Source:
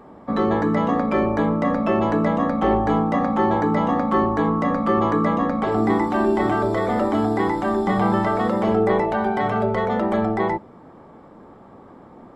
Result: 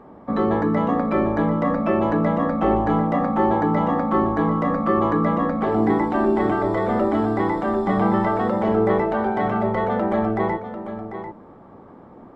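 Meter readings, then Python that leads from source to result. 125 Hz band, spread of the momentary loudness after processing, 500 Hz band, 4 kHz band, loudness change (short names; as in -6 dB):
+0.5 dB, 4 LU, 0.0 dB, n/a, 0.0 dB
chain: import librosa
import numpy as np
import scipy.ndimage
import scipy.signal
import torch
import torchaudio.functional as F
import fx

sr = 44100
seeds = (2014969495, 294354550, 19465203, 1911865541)

p1 = fx.high_shelf(x, sr, hz=3800.0, db=-12.0)
y = p1 + fx.echo_single(p1, sr, ms=744, db=-10.5, dry=0)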